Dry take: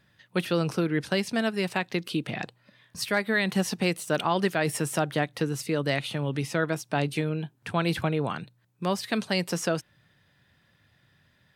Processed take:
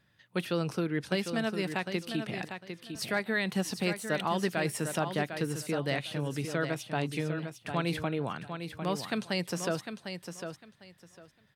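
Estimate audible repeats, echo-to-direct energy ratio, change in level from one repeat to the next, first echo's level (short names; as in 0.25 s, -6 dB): 2, -8.0 dB, -14.0 dB, -8.0 dB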